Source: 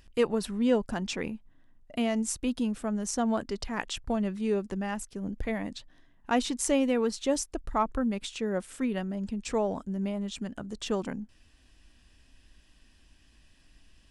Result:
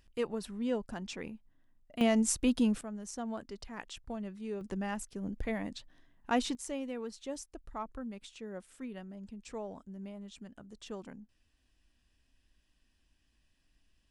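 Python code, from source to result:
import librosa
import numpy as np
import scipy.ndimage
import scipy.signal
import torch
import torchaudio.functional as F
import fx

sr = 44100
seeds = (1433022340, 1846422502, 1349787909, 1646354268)

y = fx.gain(x, sr, db=fx.steps((0.0, -8.5), (2.01, 1.5), (2.81, -11.0), (4.61, -3.5), (6.55, -13.0)))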